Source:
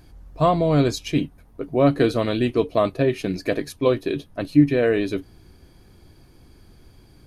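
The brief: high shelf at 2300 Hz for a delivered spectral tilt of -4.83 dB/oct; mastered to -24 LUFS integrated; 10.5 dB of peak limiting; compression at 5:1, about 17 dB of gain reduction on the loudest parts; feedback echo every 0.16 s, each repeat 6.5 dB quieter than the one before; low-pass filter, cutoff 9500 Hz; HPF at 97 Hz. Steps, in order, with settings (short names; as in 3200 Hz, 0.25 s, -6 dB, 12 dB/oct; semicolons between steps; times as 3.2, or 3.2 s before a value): HPF 97 Hz; LPF 9500 Hz; high shelf 2300 Hz +7.5 dB; compressor 5:1, threshold -29 dBFS; limiter -26.5 dBFS; feedback echo 0.16 s, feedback 47%, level -6.5 dB; gain +12.5 dB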